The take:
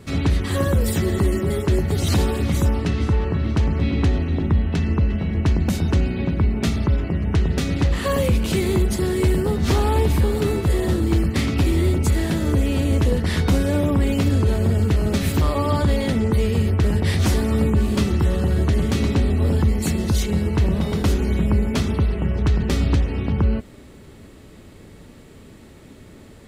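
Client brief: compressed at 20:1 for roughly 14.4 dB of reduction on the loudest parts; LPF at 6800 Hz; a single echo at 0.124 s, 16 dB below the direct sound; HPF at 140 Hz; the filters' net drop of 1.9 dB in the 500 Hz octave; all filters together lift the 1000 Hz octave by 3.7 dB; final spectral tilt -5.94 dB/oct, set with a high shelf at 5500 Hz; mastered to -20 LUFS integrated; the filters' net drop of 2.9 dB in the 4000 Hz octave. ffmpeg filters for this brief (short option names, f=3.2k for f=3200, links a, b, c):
-af "highpass=140,lowpass=6.8k,equalizer=f=500:t=o:g=-3.5,equalizer=f=1k:t=o:g=5.5,equalizer=f=4k:t=o:g=-6.5,highshelf=f=5.5k:g=7.5,acompressor=threshold=-32dB:ratio=20,aecho=1:1:124:0.158,volume=17dB"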